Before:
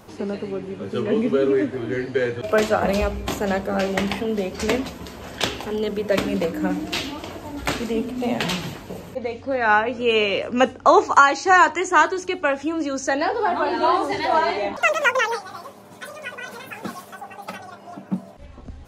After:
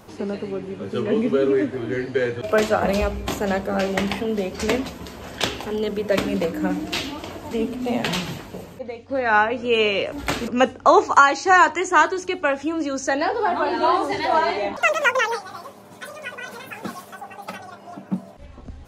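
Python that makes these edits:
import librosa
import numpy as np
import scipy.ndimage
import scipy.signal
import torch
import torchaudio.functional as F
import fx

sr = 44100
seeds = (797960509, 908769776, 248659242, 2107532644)

y = fx.edit(x, sr, fx.move(start_s=7.51, length_s=0.36, to_s=10.48),
    fx.fade_out_to(start_s=8.81, length_s=0.64, floor_db=-9.0), tone=tone)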